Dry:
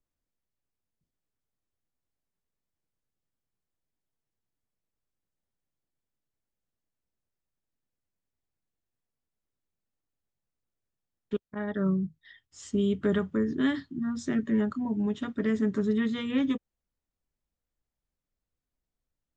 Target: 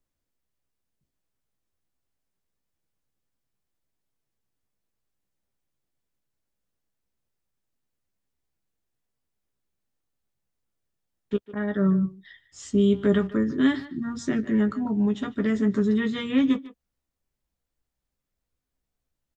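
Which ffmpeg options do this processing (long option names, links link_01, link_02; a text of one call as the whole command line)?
ffmpeg -i in.wav -filter_complex "[0:a]asplit=2[link_01][link_02];[link_02]adelay=15,volume=-8dB[link_03];[link_01][link_03]amix=inputs=2:normalize=0,asplit=2[link_04][link_05];[link_05]adelay=150,highpass=300,lowpass=3400,asoftclip=type=hard:threshold=-22.5dB,volume=-15dB[link_06];[link_04][link_06]amix=inputs=2:normalize=0,volume=3.5dB" out.wav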